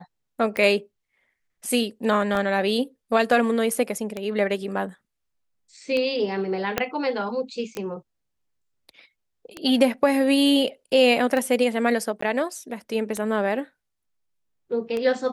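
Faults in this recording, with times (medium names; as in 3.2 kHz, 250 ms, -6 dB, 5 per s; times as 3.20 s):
tick 33 1/3 rpm -15 dBFS
2.35 s: dropout 4 ms
6.78 s: pop -6 dBFS
7.75 s: pop -21 dBFS
12.21–12.22 s: dropout 14 ms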